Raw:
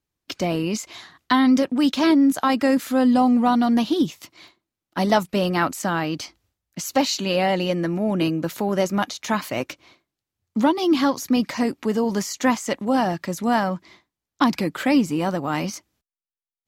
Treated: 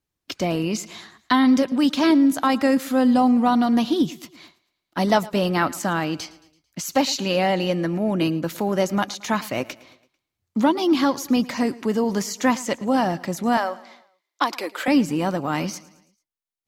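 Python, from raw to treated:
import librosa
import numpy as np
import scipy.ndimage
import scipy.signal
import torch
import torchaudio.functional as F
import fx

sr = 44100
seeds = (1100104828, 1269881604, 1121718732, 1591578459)

p1 = fx.highpass(x, sr, hz=390.0, slope=24, at=(13.57, 14.88))
y = p1 + fx.echo_feedback(p1, sr, ms=111, feedback_pct=50, wet_db=-20.5, dry=0)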